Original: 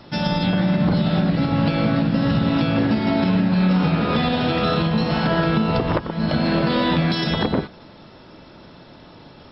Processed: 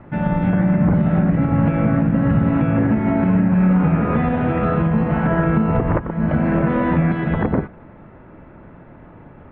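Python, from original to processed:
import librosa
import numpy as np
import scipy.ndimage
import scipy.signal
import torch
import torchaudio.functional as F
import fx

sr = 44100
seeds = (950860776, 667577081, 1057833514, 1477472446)

y = scipy.signal.sosfilt(scipy.signal.butter(6, 2200.0, 'lowpass', fs=sr, output='sos'), x)
y = fx.low_shelf(y, sr, hz=130.0, db=8.5)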